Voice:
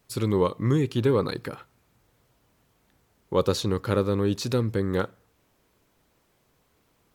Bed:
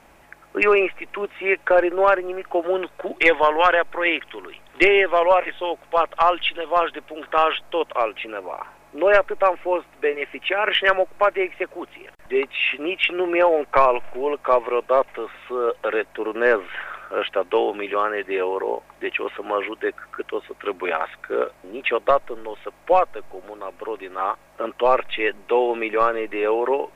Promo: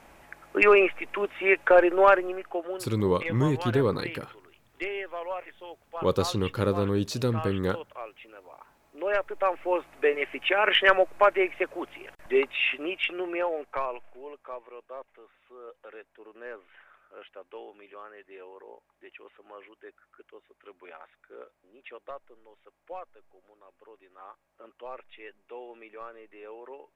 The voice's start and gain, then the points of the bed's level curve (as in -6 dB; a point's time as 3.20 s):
2.70 s, -2.0 dB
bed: 2.18 s -1.5 dB
2.98 s -18 dB
8.57 s -18 dB
9.94 s -2 dB
12.37 s -2 dB
14.72 s -23.5 dB